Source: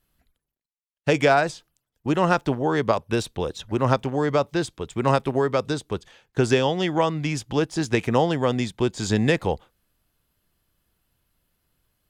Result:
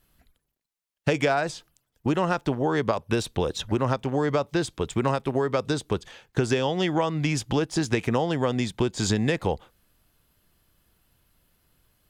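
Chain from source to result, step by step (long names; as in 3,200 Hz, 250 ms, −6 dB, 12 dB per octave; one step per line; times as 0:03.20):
downward compressor 4 to 1, threshold −27 dBFS, peak gain reduction 12 dB
level +5.5 dB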